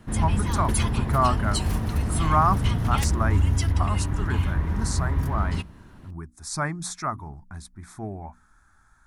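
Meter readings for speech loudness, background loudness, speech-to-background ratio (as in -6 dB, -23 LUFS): -29.0 LUFS, -25.5 LUFS, -3.5 dB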